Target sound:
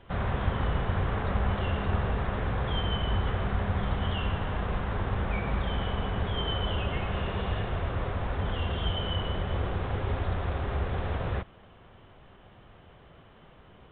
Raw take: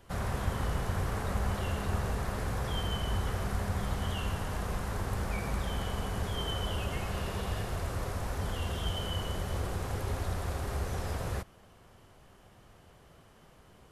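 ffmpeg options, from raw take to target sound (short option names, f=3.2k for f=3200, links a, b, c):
-af "volume=4dB" -ar 8000 -c:a pcm_alaw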